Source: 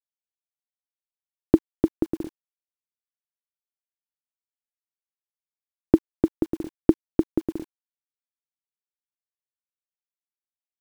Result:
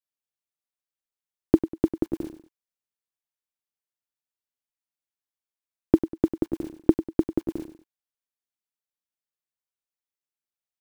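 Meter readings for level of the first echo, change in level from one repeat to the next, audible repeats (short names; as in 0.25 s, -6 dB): -12.0 dB, -9.0 dB, 2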